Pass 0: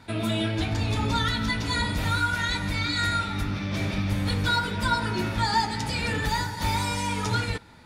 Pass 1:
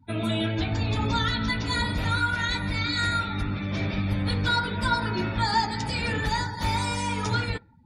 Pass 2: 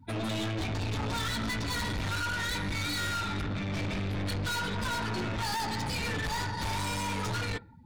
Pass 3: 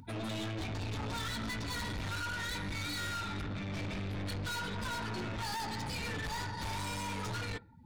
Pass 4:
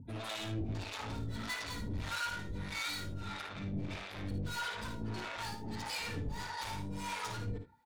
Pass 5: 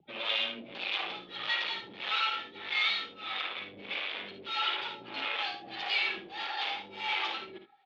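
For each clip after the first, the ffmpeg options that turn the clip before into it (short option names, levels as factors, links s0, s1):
-af "afftdn=nr=31:nf=-42"
-af "aeval=exprs='(tanh(50.1*val(0)+0.25)-tanh(0.25))/50.1':c=same,volume=1.5"
-af "acompressor=mode=upward:threshold=0.00891:ratio=2.5,volume=0.531"
-filter_complex "[0:a]acrossover=split=520[s0][s1];[s0]aeval=exprs='val(0)*(1-1/2+1/2*cos(2*PI*1.6*n/s))':c=same[s2];[s1]aeval=exprs='val(0)*(1-1/2-1/2*cos(2*PI*1.6*n/s))':c=same[s3];[s2][s3]amix=inputs=2:normalize=0,asplit=2[s4][s5];[s5]aecho=0:1:55|76:0.398|0.251[s6];[s4][s6]amix=inputs=2:normalize=0,volume=1.26"
-af "highpass=f=420:t=q:w=0.5412,highpass=f=420:t=q:w=1.307,lowpass=f=3500:t=q:w=0.5176,lowpass=f=3500:t=q:w=0.7071,lowpass=f=3500:t=q:w=1.932,afreqshift=-93,aexciter=amount=2.9:drive=4.2:freq=2400,highshelf=f=2700:g=8.5,volume=1.5"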